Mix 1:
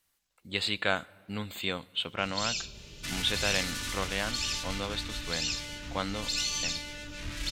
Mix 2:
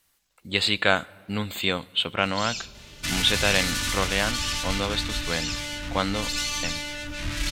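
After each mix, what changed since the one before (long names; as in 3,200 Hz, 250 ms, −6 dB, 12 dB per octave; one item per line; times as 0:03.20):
speech +7.5 dB
second sound +8.5 dB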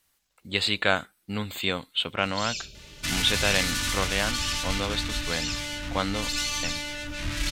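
reverb: off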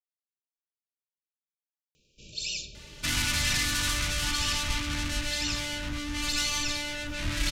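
speech: muted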